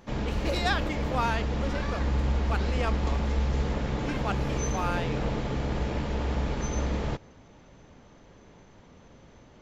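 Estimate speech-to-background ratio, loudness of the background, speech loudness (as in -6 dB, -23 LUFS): -3.5 dB, -30.5 LUFS, -34.0 LUFS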